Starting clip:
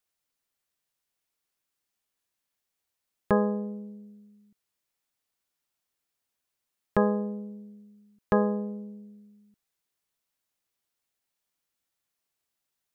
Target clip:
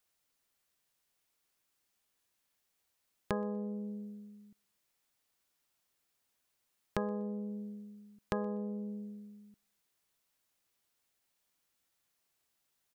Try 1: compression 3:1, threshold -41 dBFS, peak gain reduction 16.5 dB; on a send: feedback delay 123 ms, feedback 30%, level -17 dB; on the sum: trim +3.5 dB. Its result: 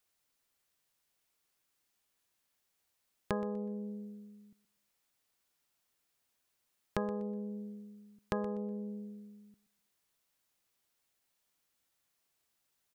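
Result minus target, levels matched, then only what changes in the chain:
echo-to-direct +12 dB
change: feedback delay 123 ms, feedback 30%, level -29 dB

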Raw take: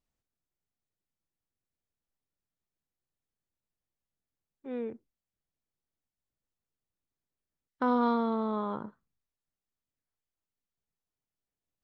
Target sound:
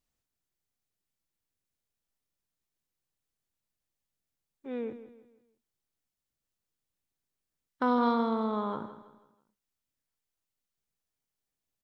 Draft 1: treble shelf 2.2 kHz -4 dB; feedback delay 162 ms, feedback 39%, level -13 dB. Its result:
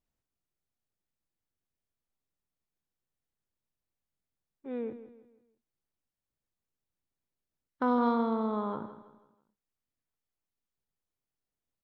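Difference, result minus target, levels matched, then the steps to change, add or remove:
4 kHz band -6.0 dB
change: treble shelf 2.2 kHz +5 dB

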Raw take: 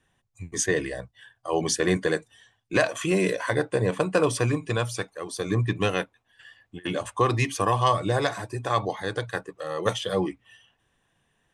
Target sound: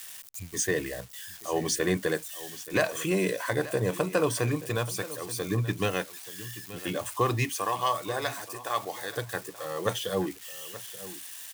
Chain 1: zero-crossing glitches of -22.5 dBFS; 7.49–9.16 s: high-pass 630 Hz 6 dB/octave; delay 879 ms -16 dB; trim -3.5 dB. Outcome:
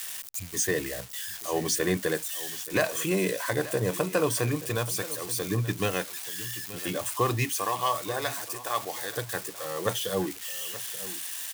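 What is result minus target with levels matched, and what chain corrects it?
zero-crossing glitches: distortion +6 dB
zero-crossing glitches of -29 dBFS; 7.49–9.16 s: high-pass 630 Hz 6 dB/octave; delay 879 ms -16 dB; trim -3.5 dB

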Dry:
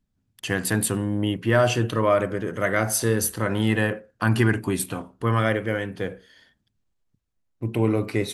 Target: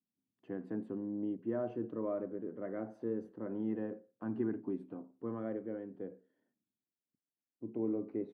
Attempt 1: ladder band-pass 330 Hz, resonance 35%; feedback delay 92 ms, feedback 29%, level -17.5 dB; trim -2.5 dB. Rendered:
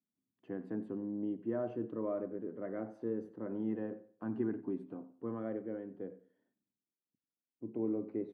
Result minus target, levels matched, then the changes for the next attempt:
echo-to-direct +11.5 dB
change: feedback delay 92 ms, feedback 29%, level -29 dB

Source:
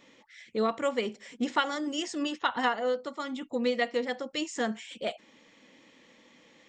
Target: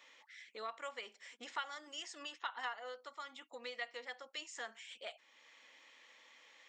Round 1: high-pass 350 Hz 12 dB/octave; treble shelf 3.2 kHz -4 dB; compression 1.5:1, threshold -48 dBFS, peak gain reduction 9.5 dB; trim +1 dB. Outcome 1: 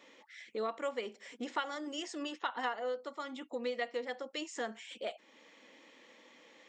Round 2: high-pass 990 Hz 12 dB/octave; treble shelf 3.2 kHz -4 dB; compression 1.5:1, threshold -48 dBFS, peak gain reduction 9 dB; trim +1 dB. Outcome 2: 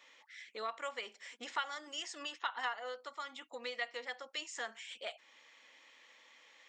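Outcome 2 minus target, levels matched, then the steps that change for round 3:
compression: peak gain reduction -4 dB
change: compression 1.5:1, threshold -60 dBFS, peak gain reduction 13 dB

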